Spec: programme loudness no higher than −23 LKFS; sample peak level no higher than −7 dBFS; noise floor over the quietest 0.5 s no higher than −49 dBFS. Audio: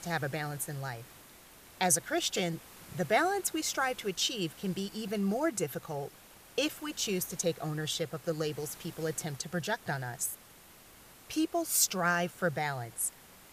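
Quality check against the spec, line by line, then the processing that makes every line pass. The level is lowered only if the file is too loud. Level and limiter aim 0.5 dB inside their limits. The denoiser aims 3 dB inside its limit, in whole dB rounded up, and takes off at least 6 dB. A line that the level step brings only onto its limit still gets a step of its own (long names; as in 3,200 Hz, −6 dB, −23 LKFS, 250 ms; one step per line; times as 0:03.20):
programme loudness −32.5 LKFS: in spec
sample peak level −12.5 dBFS: in spec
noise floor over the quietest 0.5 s −56 dBFS: in spec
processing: no processing needed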